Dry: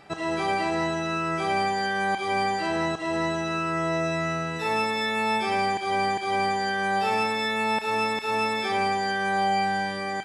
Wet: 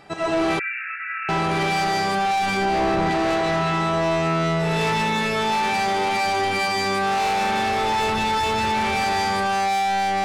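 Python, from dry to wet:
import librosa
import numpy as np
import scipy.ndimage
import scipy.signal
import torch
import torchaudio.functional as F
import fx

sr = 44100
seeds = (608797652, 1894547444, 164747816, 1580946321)

p1 = fx.octave_divider(x, sr, octaves=2, level_db=-1.0, at=(7.65, 8.43))
p2 = p1 + fx.echo_single(p1, sr, ms=494, db=-8.0, dry=0)
p3 = fx.rev_freeverb(p2, sr, rt60_s=2.6, hf_ratio=0.3, predelay_ms=65, drr_db=-9.5)
p4 = 10.0 ** (-19.0 / 20.0) * np.tanh(p3 / 10.0 ** (-19.0 / 20.0))
p5 = fx.rider(p4, sr, range_db=3, speed_s=0.5)
p6 = fx.brickwall_bandpass(p5, sr, low_hz=1300.0, high_hz=2800.0, at=(0.59, 1.29))
y = fx.tilt_eq(p6, sr, slope=-1.5, at=(2.57, 3.11))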